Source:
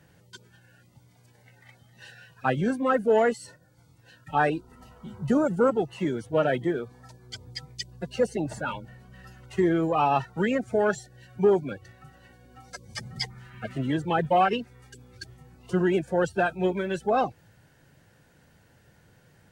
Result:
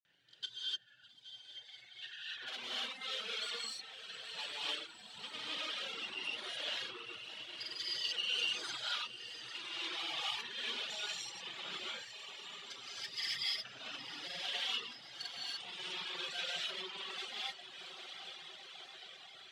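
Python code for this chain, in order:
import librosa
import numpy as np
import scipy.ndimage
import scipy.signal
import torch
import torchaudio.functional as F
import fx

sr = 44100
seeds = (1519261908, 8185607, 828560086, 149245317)

y = fx.envelope_sharpen(x, sr, power=1.5)
y = fx.tube_stage(y, sr, drive_db=42.0, bias=0.7)
y = fx.bandpass_q(y, sr, hz=3400.0, q=3.5)
y = fx.echo_swell(y, sr, ms=107, loudest=8, wet_db=-17)
y = fx.granulator(y, sr, seeds[0], grain_ms=100.0, per_s=20.0, spray_ms=100.0, spread_st=0)
y = fx.rev_gated(y, sr, seeds[1], gate_ms=320, shape='rising', drr_db=-7.5)
y = fx.dereverb_blind(y, sr, rt60_s=1.5)
y = y + 10.0 ** (-16.5 / 20.0) * np.pad(y, (int(817 * sr / 1000.0), 0))[:len(y)]
y = y * librosa.db_to_amplitude(14.5)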